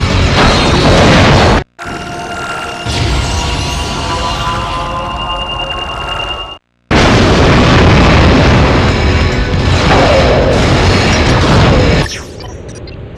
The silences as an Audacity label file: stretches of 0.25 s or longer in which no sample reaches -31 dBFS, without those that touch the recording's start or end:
6.570000	6.910000	silence